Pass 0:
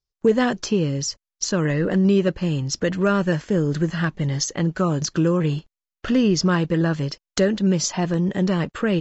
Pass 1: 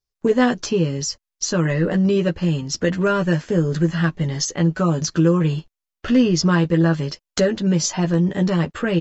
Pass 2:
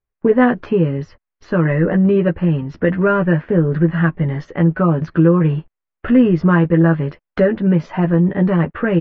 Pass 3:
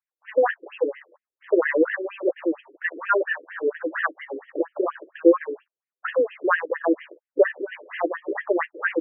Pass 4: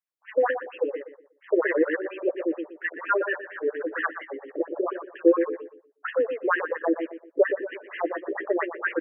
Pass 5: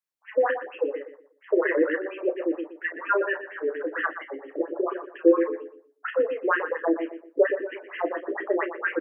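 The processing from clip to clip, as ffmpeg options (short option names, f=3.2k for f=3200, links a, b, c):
-filter_complex "[0:a]asplit=2[a][b];[b]adelay=12,volume=-4dB[c];[a][c]amix=inputs=2:normalize=0"
-af "lowpass=f=2.2k:w=0.5412,lowpass=f=2.2k:w=1.3066,volume=4dB"
-af "dynaudnorm=f=160:g=5:m=11.5dB,afftfilt=real='re*between(b*sr/1024,370*pow(2400/370,0.5+0.5*sin(2*PI*4.3*pts/sr))/1.41,370*pow(2400/370,0.5+0.5*sin(2*PI*4.3*pts/sr))*1.41)':imag='im*between(b*sr/1024,370*pow(2400/370,0.5+0.5*sin(2*PI*4.3*pts/sr))/1.41,370*pow(2400/370,0.5+0.5*sin(2*PI*4.3*pts/sr))*1.41)':win_size=1024:overlap=0.75"
-filter_complex "[0:a]asplit=2[a][b];[b]adelay=121,lowpass=f=1.1k:p=1,volume=-7dB,asplit=2[c][d];[d]adelay=121,lowpass=f=1.1k:p=1,volume=0.32,asplit=2[e][f];[f]adelay=121,lowpass=f=1.1k:p=1,volume=0.32,asplit=2[g][h];[h]adelay=121,lowpass=f=1.1k:p=1,volume=0.32[i];[a][c][e][g][i]amix=inputs=5:normalize=0,volume=-3dB"
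-filter_complex "[0:a]asplit=2[a][b];[b]adelay=33,volume=-10.5dB[c];[a][c]amix=inputs=2:normalize=0"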